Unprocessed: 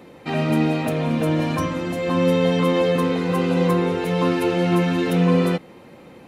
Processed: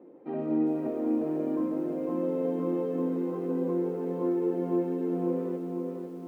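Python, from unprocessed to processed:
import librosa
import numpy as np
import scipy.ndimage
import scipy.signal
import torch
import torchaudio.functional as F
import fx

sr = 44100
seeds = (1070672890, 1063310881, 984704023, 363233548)

y = fx.rider(x, sr, range_db=4, speed_s=2.0)
y = fx.ladder_bandpass(y, sr, hz=380.0, resonance_pct=45)
y = fx.echo_feedback(y, sr, ms=501, feedback_pct=51, wet_db=-5.5)
y = fx.echo_crushed(y, sr, ms=405, feedback_pct=55, bits=9, wet_db=-14)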